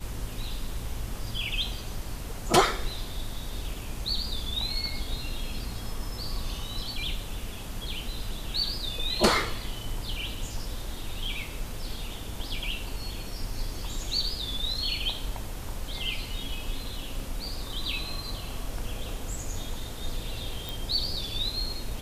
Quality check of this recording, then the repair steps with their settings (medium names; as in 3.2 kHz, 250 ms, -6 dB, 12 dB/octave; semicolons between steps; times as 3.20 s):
20.69 s: pop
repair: de-click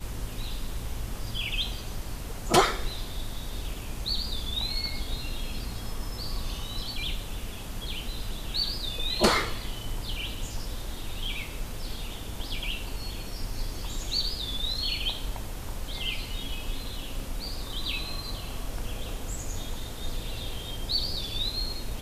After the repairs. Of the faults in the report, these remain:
nothing left